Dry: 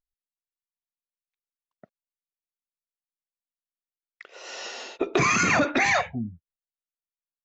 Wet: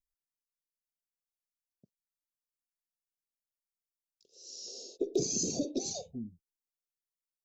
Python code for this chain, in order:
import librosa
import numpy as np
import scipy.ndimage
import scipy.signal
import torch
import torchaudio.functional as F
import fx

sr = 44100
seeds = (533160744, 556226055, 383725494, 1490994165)

y = scipy.signal.sosfilt(scipy.signal.ellip(3, 1.0, 60, [460.0, 4900.0], 'bandstop', fs=sr, output='sos'), x)
y = fx.peak_eq(y, sr, hz=fx.steps((0.0, 530.0), (4.68, 85.0)), db=-13.5, octaves=2.8)
y = F.gain(torch.from_numpy(y), -1.5).numpy()